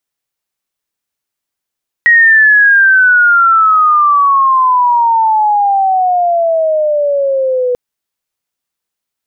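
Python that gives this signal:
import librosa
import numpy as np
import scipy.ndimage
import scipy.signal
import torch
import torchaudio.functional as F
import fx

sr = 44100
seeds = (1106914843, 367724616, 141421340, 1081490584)

y = fx.chirp(sr, length_s=5.69, from_hz=1900.0, to_hz=490.0, law='logarithmic', from_db=-3.0, to_db=-10.0)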